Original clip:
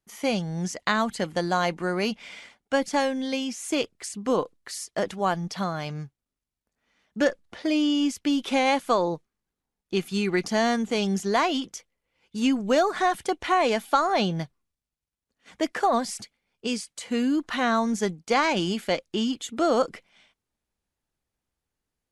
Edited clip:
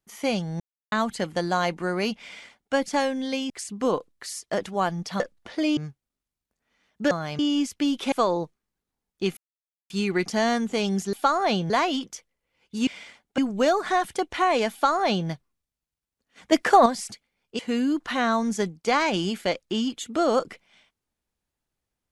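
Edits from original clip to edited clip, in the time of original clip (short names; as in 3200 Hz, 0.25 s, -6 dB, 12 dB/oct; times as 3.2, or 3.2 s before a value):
0.6–0.92 mute
2.23–2.74 copy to 12.48
3.5–3.95 cut
5.65–5.93 swap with 7.27–7.84
8.57–8.83 cut
10.08 insert silence 0.53 s
13.82–14.39 copy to 11.31
15.62–15.96 gain +7 dB
16.69–17.02 cut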